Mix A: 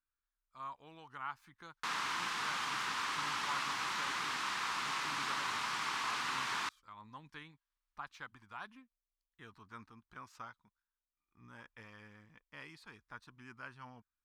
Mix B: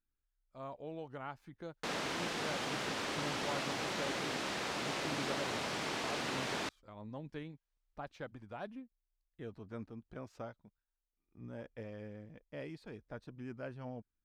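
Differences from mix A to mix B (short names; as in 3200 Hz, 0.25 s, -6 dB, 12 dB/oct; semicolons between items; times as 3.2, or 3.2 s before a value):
speech: add high shelf 4300 Hz -6 dB; master: add resonant low shelf 790 Hz +10 dB, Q 3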